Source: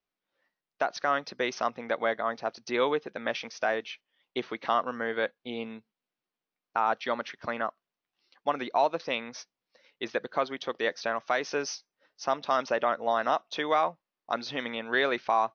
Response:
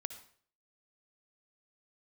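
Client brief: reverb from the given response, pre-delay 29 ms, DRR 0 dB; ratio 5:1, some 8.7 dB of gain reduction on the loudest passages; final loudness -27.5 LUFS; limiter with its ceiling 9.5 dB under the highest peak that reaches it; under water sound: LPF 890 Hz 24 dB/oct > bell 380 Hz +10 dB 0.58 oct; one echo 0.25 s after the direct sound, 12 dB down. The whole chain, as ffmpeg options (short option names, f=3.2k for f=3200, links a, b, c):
-filter_complex "[0:a]acompressor=threshold=-30dB:ratio=5,alimiter=level_in=0.5dB:limit=-24dB:level=0:latency=1,volume=-0.5dB,aecho=1:1:250:0.251,asplit=2[a][b];[1:a]atrim=start_sample=2205,adelay=29[c];[b][c]afir=irnorm=-1:irlink=0,volume=1.5dB[d];[a][d]amix=inputs=2:normalize=0,lowpass=f=890:w=0.5412,lowpass=f=890:w=1.3066,equalizer=f=380:t=o:w=0.58:g=10,volume=7dB"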